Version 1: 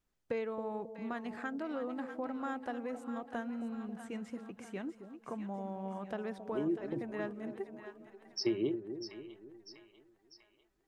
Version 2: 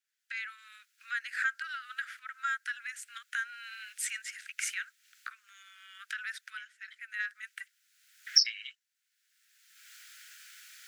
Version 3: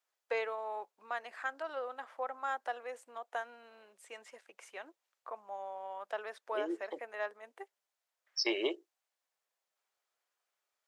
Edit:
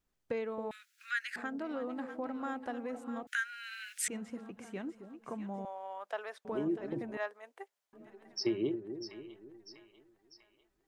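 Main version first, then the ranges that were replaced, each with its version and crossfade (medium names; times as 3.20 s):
1
0.71–1.36 s: from 2
3.27–4.08 s: from 2
5.65–6.45 s: from 3
7.17–7.93 s: from 3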